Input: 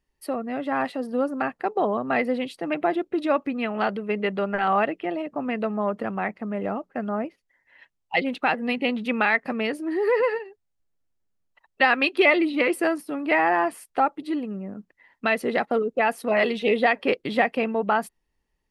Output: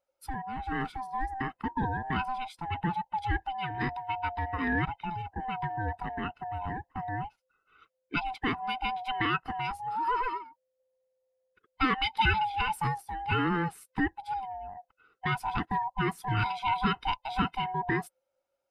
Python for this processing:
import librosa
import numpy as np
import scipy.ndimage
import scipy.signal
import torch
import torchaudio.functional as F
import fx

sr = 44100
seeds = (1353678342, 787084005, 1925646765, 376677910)

y = fx.band_swap(x, sr, width_hz=500)
y = y * librosa.db_to_amplitude(-7.0)